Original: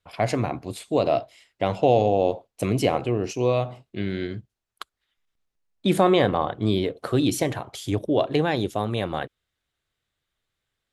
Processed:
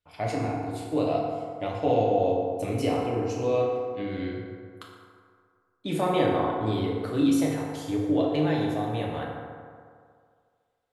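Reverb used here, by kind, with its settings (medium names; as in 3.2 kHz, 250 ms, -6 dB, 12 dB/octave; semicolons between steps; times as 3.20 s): FDN reverb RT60 2.1 s, low-frequency decay 0.85×, high-frequency decay 0.45×, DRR -4 dB; trim -10 dB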